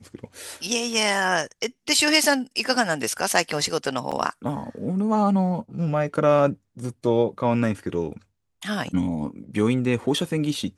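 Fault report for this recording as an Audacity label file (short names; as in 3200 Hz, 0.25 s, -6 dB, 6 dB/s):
4.110000	4.120000	gap 6.2 ms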